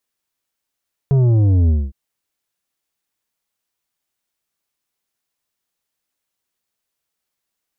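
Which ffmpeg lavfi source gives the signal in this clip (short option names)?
-f lavfi -i "aevalsrc='0.266*clip((0.81-t)/0.23,0,1)*tanh(2.66*sin(2*PI*140*0.81/log(65/140)*(exp(log(65/140)*t/0.81)-1)))/tanh(2.66)':d=0.81:s=44100"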